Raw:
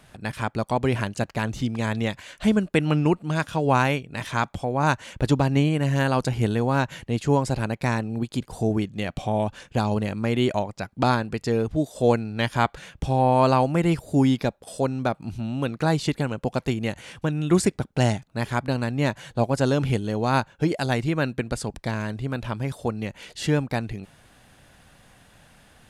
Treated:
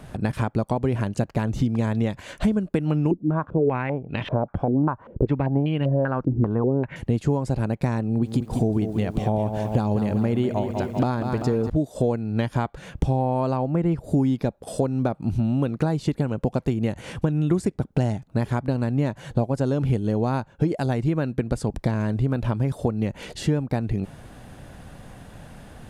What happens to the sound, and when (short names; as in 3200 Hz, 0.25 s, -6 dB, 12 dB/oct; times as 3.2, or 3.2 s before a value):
3.11–6.96 stepped low-pass 5.1 Hz 300–3000 Hz
8.06–11.7 lo-fi delay 0.195 s, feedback 55%, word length 8-bit, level -9.5 dB
13.57–14.04 high shelf 4200 Hz -11.5 dB
whole clip: high shelf 4000 Hz +6 dB; compressor 6:1, threshold -32 dBFS; tilt shelf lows +8 dB, about 1300 Hz; gain +5.5 dB